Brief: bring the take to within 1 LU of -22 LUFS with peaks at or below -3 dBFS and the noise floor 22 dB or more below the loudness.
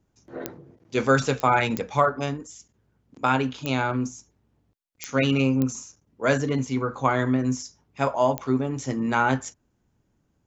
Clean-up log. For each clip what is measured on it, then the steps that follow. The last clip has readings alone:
clicks 7; loudness -24.5 LUFS; peak -6.0 dBFS; loudness target -22.0 LUFS
-> de-click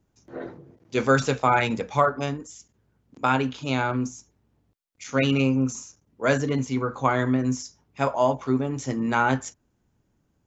clicks 0; loudness -24.5 LUFS; peak -6.0 dBFS; loudness target -22.0 LUFS
-> gain +2.5 dB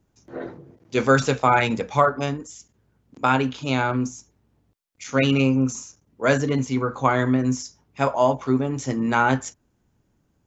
loudness -22.0 LUFS; peak -3.5 dBFS; noise floor -69 dBFS

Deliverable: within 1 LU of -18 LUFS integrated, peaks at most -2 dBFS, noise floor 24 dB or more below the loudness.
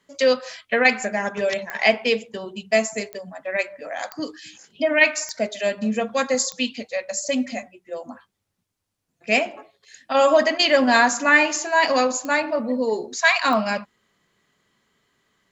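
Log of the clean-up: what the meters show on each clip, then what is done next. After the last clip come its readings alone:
clicks 7; loudness -21.0 LUFS; peak -3.0 dBFS; loudness target -18.0 LUFS
-> de-click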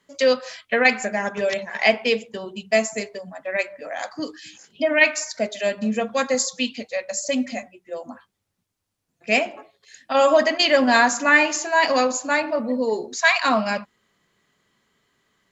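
clicks 0; loudness -21.0 LUFS; peak -3.0 dBFS; loudness target -18.0 LUFS
-> gain +3 dB; limiter -2 dBFS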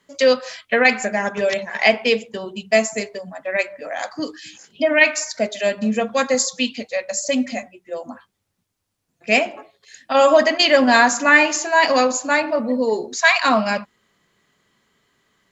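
loudness -18.0 LUFS; peak -2.0 dBFS; noise floor -73 dBFS

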